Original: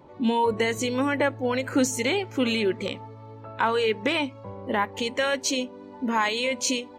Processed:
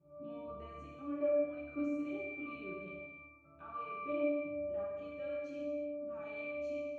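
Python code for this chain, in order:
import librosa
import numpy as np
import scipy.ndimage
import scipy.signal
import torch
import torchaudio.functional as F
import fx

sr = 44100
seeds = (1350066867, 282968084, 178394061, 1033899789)

y = fx.octave_resonator(x, sr, note='D', decay_s=0.79)
y = fx.rev_gated(y, sr, seeds[0], gate_ms=390, shape='falling', drr_db=-4.0)
y = y * librosa.db_to_amplitude(2.5)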